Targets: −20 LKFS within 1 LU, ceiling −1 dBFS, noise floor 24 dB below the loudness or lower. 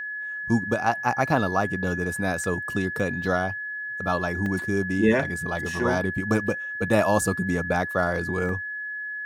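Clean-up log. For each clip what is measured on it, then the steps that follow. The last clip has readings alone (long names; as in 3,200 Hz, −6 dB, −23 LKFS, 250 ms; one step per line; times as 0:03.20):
number of dropouts 3; longest dropout 1.9 ms; interfering tone 1,700 Hz; level of the tone −30 dBFS; integrated loudness −25.0 LKFS; sample peak −7.5 dBFS; target loudness −20.0 LKFS
→ repair the gap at 0:02.44/0:04.46/0:08.49, 1.9 ms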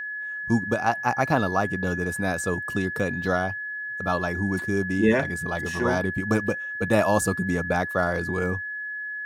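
number of dropouts 0; interfering tone 1,700 Hz; level of the tone −30 dBFS
→ notch filter 1,700 Hz, Q 30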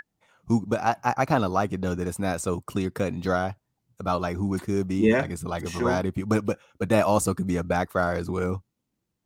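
interfering tone none found; integrated loudness −26.0 LKFS; sample peak −7.5 dBFS; target loudness −20.0 LKFS
→ level +6 dB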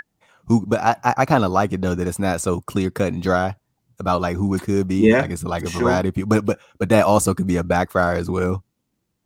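integrated loudness −20.0 LKFS; sample peak −1.5 dBFS; background noise floor −74 dBFS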